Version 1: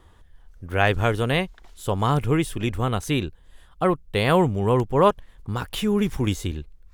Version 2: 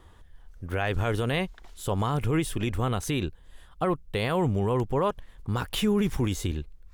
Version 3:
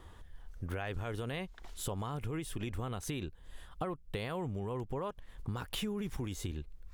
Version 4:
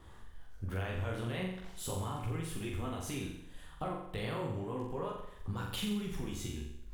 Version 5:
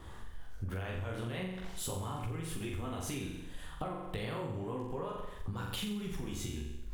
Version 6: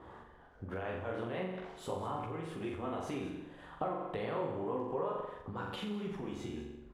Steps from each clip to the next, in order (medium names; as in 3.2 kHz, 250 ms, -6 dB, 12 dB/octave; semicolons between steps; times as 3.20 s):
peak limiter -16 dBFS, peak gain reduction 10 dB
compression 6:1, threshold -35 dBFS, peak gain reduction 14 dB
chorus voices 2, 0.35 Hz, delay 15 ms, depth 4.8 ms; flutter echo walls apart 7.4 m, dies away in 0.74 s; crackle 230 per s -65 dBFS; trim +1 dB
compression, threshold -41 dBFS, peak gain reduction 9.5 dB; trim +6 dB
band-pass filter 640 Hz, Q 0.66; delay 202 ms -14 dB; tape noise reduction on one side only decoder only; trim +5 dB